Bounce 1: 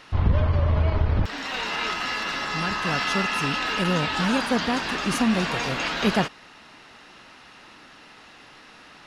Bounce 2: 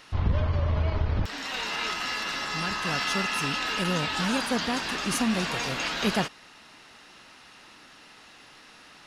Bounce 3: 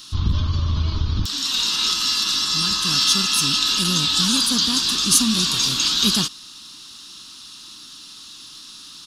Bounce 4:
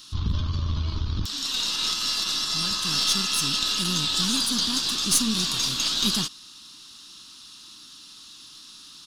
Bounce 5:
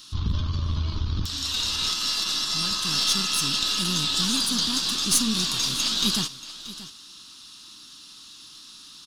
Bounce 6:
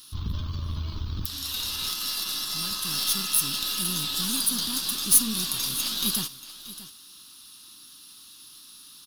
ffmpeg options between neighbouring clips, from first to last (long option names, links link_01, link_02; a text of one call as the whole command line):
ffmpeg -i in.wav -af "highshelf=frequency=4800:gain=9,volume=-4.5dB" out.wav
ffmpeg -i in.wav -af "firequalizer=gain_entry='entry(310,0);entry(500,-16);entry(720,-17);entry(1100,-1);entry(2000,-13);entry(3500,12)':delay=0.05:min_phase=1,volume=4.5dB" out.wav
ffmpeg -i in.wav -af "aeval=exprs='0.891*(cos(1*acos(clip(val(0)/0.891,-1,1)))-cos(1*PI/2))+0.0562*(cos(6*acos(clip(val(0)/0.891,-1,1)))-cos(6*PI/2))':channel_layout=same,volume=-5.5dB" out.wav
ffmpeg -i in.wav -af "aecho=1:1:631:0.168" out.wav
ffmpeg -i in.wav -af "aexciter=amount=9.2:drive=3.3:freq=10000,volume=-5dB" out.wav